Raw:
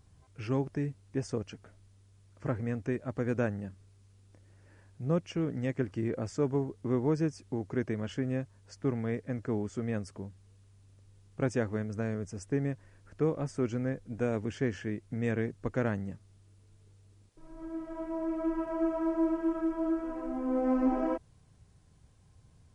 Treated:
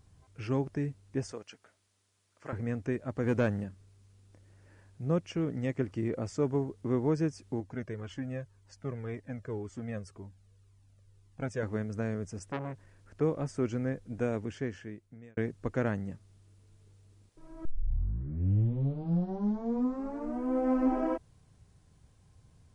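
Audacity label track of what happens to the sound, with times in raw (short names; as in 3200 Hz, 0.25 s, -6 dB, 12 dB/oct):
1.320000	2.530000	HPF 940 Hz 6 dB/oct
3.230000	3.640000	sample leveller passes 1
5.450000	6.430000	notch 1600 Hz
7.600000	11.630000	cascading flanger falling 1.9 Hz
12.390000	13.210000	core saturation saturates under 1200 Hz
14.190000	15.370000	fade out linear
17.650000	17.650000	tape start 2.86 s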